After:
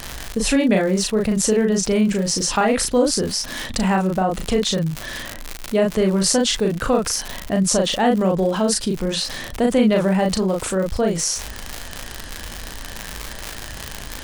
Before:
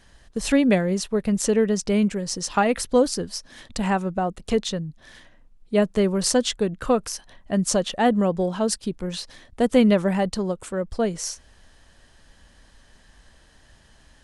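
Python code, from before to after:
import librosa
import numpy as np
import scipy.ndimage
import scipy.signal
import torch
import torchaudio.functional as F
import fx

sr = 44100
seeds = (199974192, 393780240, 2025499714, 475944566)

y = fx.dmg_crackle(x, sr, seeds[0], per_s=78.0, level_db=-31.0)
y = fx.doubler(y, sr, ms=37.0, db=-3.5)
y = fx.env_flatten(y, sr, amount_pct=50)
y = y * 10.0 ** (-2.0 / 20.0)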